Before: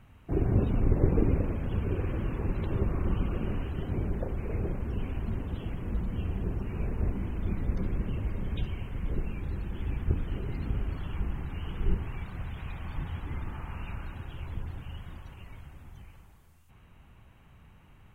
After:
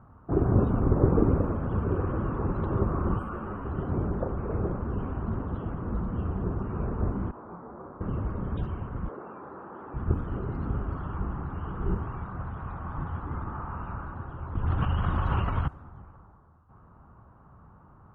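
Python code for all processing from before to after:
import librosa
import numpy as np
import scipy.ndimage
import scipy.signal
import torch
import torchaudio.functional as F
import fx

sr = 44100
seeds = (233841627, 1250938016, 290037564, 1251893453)

y = fx.chain(x, sr, fx.tilt_shelf(db=-5.0, hz=710.0),
    fx.resample_bad(factor=4, down='filtered', up='hold'),
    fx.ensemble(), at=(3.19, 3.65))
y = fx.chain(y, sr, fx.bandpass_q(hz=830.0, q=1.1),
    fx.doubler(ms=29.0, db=-2),
    fx.detune_double(cents=22), at=(7.31, 8.01))
y = fx.chain(y, sr, fx.highpass(hz=500.0, slope=12),
    fx.high_shelf(hz=2500.0, db=-10.5),
    fx.env_flatten(amount_pct=50), at=(9.08, 9.94))
y = fx.chain(y, sr, fx.lowpass_res(hz=3000.0, q=2.5),
    fx.low_shelf(hz=98.0, db=6.5),
    fx.env_flatten(amount_pct=100), at=(14.55, 15.68))
y = fx.highpass(y, sr, hz=77.0, slope=6)
y = fx.high_shelf_res(y, sr, hz=1700.0, db=-10.0, q=3.0)
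y = fx.env_lowpass(y, sr, base_hz=1300.0, full_db=-24.5)
y = F.gain(torch.from_numpy(y), 4.5).numpy()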